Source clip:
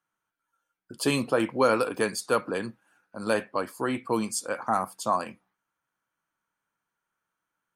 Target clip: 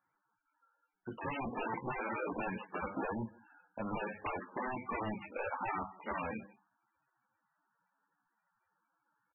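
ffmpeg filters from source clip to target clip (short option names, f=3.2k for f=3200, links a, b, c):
-filter_complex "[0:a]alimiter=limit=-14.5dB:level=0:latency=1:release=134,aeval=exprs='0.0299*(abs(mod(val(0)/0.0299+3,4)-2)-1)':c=same,atempo=0.83,flanger=delay=9.4:depth=1.2:regen=-62:speed=0.43:shape=triangular,acontrast=60,aresample=8000,aresample=44100,equalizer=f=870:t=o:w=0.31:g=7,bandreject=f=50:t=h:w=6,bandreject=f=100:t=h:w=6,bandreject=f=150:t=h:w=6,bandreject=f=200:t=h:w=6,asplit=2[a][b];[b]adelay=160,highpass=300,lowpass=3.4k,asoftclip=type=hard:threshold=-31.5dB,volume=-22dB[c];[a][c]amix=inputs=2:normalize=0,acompressor=threshold=-37dB:ratio=2" -ar 24000 -c:a libmp3lame -b:a 8k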